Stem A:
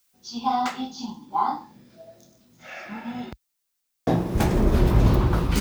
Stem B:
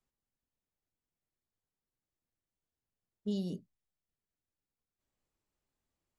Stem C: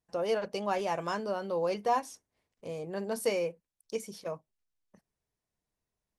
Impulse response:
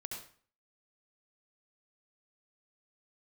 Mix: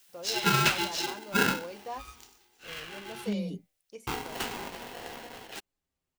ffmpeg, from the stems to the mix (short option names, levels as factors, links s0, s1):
-filter_complex "[0:a]highpass=f=210:p=1,highshelf=f=1700:t=q:w=3:g=6,aeval=exprs='val(0)*sgn(sin(2*PI*600*n/s))':c=same,afade=t=out:st=2.05:d=0.46:silence=0.298538,afade=t=out:st=4.36:d=0.43:silence=0.354813[s0];[1:a]asplit=2[s1][s2];[s2]adelay=6.7,afreqshift=-0.9[s3];[s1][s3]amix=inputs=2:normalize=1,volume=1.41[s4];[2:a]flanger=delay=5.2:depth=6.1:regen=-89:speed=0.39:shape=sinusoidal,volume=0.447[s5];[s0][s4][s5]amix=inputs=3:normalize=0,equalizer=f=2700:t=o:w=0.77:g=2.5"